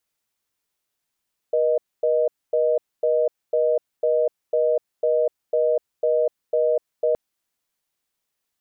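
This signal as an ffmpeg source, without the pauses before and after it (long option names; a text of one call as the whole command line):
ffmpeg -f lavfi -i "aevalsrc='0.106*(sin(2*PI*480*t)+sin(2*PI*620*t))*clip(min(mod(t,0.5),0.25-mod(t,0.5))/0.005,0,1)':duration=5.62:sample_rate=44100" out.wav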